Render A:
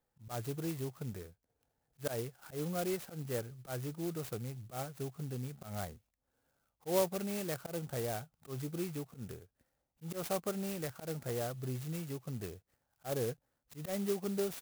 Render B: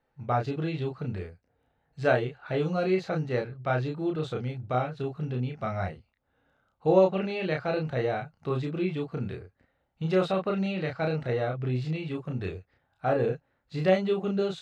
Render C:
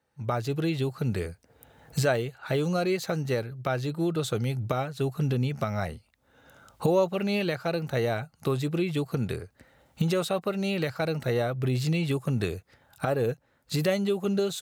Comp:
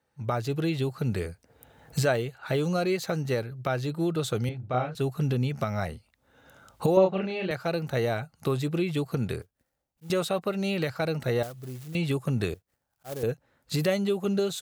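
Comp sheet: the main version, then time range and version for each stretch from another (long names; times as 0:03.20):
C
0:04.49–0:04.95: punch in from B
0:06.97–0:07.51: punch in from B
0:09.42–0:10.10: punch in from A
0:11.43–0:11.95: punch in from A
0:12.54–0:13.23: punch in from A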